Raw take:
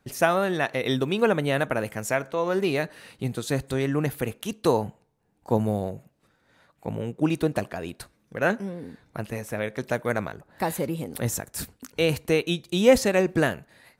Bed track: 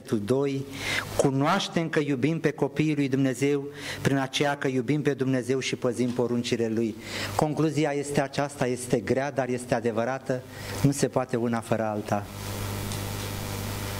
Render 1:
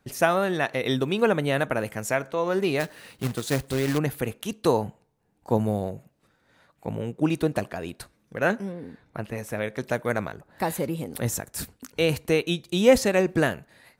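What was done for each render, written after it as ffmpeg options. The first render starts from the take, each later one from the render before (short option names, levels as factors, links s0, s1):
-filter_complex "[0:a]asplit=3[s0][s1][s2];[s0]afade=t=out:st=2.79:d=0.02[s3];[s1]acrusher=bits=2:mode=log:mix=0:aa=0.000001,afade=t=in:st=2.79:d=0.02,afade=t=out:st=3.97:d=0.02[s4];[s2]afade=t=in:st=3.97:d=0.02[s5];[s3][s4][s5]amix=inputs=3:normalize=0,asettb=1/sr,asplit=3[s6][s7][s8];[s6]atrim=end=8.724[s9];[s7]atrim=start=8.72:end=9.38,asetpts=PTS-STARTPTS,afade=t=in:d=0.004:c=qsin,afade=t=out:st=0.656:d=0.004:c=qsin,bass=f=250:g=-1,treble=f=4000:g=-7[s10];[s8]atrim=start=9.376[s11];[s9][s10]acrossfade=d=0.004:c1=hsin:c2=qsin[s12];[s12][s11]acrossfade=d=0.004:c1=qsin:c2=hsin"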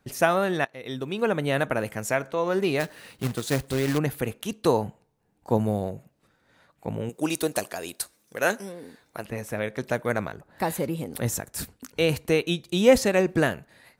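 -filter_complex "[0:a]asettb=1/sr,asplit=3[s0][s1][s2];[s0]atrim=end=7.094[s3];[s1]atrim=start=7.09:end=9.25,asetpts=PTS-STARTPTS,afade=t=in:d=0.004:c=qsin,afade=t=out:st=2.156:d=0.004:c=qsin,bass=f=250:g=-11,treble=f=4000:g=14[s4];[s2]atrim=start=9.246[s5];[s3][s4]acrossfade=d=0.004:c1=hsin:c2=qsin[s6];[s6][s5]acrossfade=d=0.004:c1=qsin:c2=hsin,asplit=2[s7][s8];[s7]atrim=end=0.65,asetpts=PTS-STARTPTS,afade=t=out:st=0.646:d=0.004:c=hsin:silence=0.0944061[s9];[s8]atrim=start=0.65,asetpts=PTS-STARTPTS,afade=t=in:d=0.92:silence=0.0944061[s10];[s9][s10]concat=n=2:v=0:a=1"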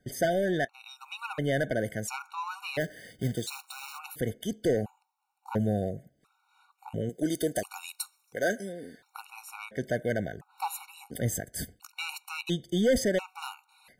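-af "asoftclip=type=tanh:threshold=0.112,afftfilt=real='re*gt(sin(2*PI*0.72*pts/sr)*(1-2*mod(floor(b*sr/1024/740),2)),0)':imag='im*gt(sin(2*PI*0.72*pts/sr)*(1-2*mod(floor(b*sr/1024/740),2)),0)':win_size=1024:overlap=0.75"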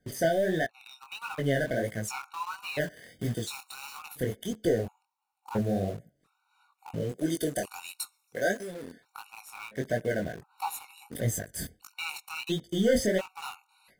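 -filter_complex "[0:a]flanger=delay=17.5:depth=7.5:speed=1.5,asplit=2[s0][s1];[s1]acrusher=bits=6:mix=0:aa=0.000001,volume=0.422[s2];[s0][s2]amix=inputs=2:normalize=0"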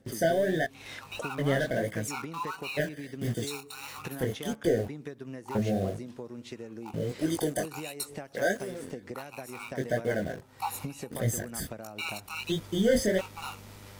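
-filter_complex "[1:a]volume=0.158[s0];[0:a][s0]amix=inputs=2:normalize=0"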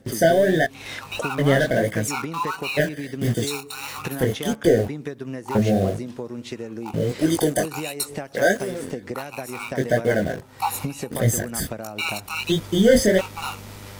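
-af "volume=2.82"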